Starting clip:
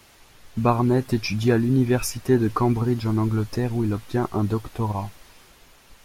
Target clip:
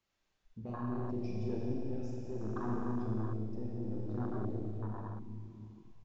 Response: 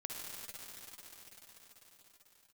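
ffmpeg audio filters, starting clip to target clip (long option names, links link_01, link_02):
-filter_complex "[0:a]aresample=16000,asoftclip=type=tanh:threshold=-19.5dB,aresample=44100,asplit=2[link_01][link_02];[link_02]adelay=823,lowpass=frequency=2000:poles=1,volume=-20.5dB,asplit=2[link_03][link_04];[link_04]adelay=823,lowpass=frequency=2000:poles=1,volume=0.54,asplit=2[link_05][link_06];[link_06]adelay=823,lowpass=frequency=2000:poles=1,volume=0.54,asplit=2[link_07][link_08];[link_08]adelay=823,lowpass=frequency=2000:poles=1,volume=0.54[link_09];[link_01][link_03][link_05][link_07][link_09]amix=inputs=5:normalize=0[link_10];[1:a]atrim=start_sample=2205,asetrate=74970,aresample=44100[link_11];[link_10][link_11]afir=irnorm=-1:irlink=0,tremolo=f=0.69:d=0.29,afwtdn=0.02,volume=-6dB"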